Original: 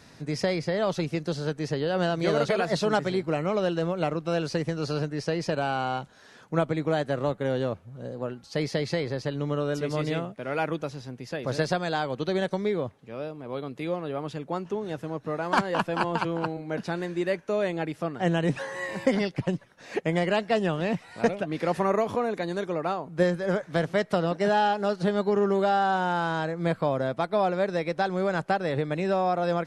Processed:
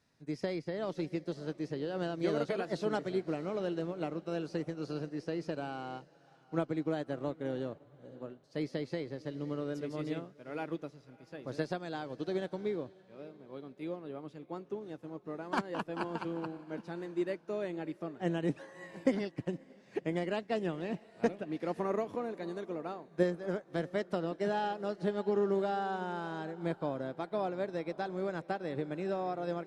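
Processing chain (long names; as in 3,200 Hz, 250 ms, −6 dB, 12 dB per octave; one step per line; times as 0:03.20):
on a send: feedback delay with all-pass diffusion 602 ms, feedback 47%, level −15 dB
on the sum: dynamic equaliser 310 Hz, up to +8 dB, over −42 dBFS, Q 1.6
expander for the loud parts 1.5 to 1, over −42 dBFS
level −8.5 dB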